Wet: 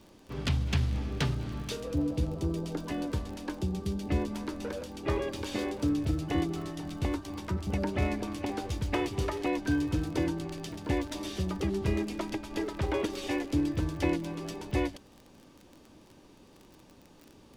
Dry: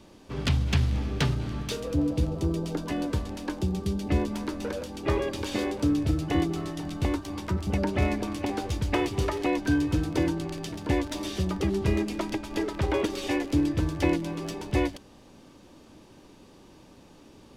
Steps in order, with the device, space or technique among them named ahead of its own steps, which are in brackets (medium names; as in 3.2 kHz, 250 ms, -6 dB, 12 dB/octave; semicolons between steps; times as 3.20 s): vinyl LP (crackle 28 per s -36 dBFS; pink noise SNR 45 dB); trim -4 dB